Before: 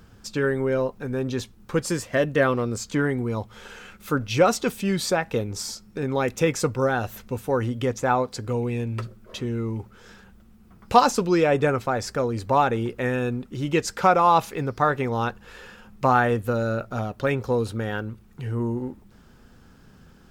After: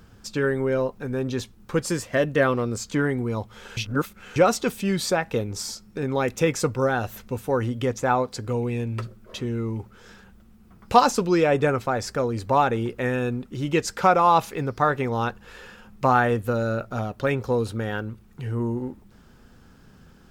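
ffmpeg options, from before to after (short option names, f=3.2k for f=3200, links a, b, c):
-filter_complex "[0:a]asplit=3[a][b][c];[a]atrim=end=3.772[d];[b]atrim=start=3.768:end=4.362,asetpts=PTS-STARTPTS,areverse[e];[c]atrim=start=4.358[f];[d][e]acrossfade=d=0.004:c1=hsin:c2=hsin[g];[g][f]acrossfade=d=0.004:c1=hsin:c2=hsin"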